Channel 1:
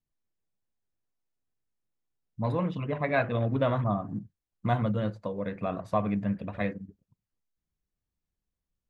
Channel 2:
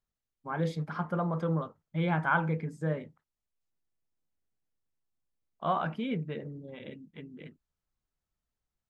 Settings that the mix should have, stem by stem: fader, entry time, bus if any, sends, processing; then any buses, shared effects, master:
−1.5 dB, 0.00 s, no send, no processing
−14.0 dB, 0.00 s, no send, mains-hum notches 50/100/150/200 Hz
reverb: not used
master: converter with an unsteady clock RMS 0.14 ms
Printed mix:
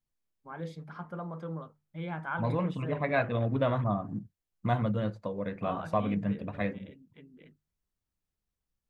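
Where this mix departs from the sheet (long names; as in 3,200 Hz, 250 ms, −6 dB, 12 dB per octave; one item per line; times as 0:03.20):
stem 2 −14.0 dB → −8.0 dB
master: missing converter with an unsteady clock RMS 0.14 ms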